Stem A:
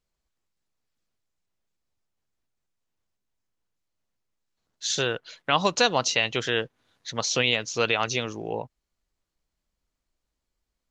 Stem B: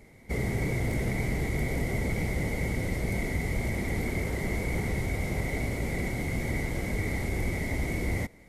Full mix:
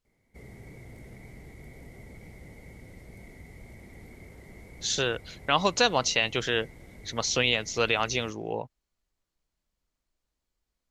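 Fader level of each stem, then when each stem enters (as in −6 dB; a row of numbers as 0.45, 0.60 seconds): −1.5, −18.0 decibels; 0.00, 0.05 seconds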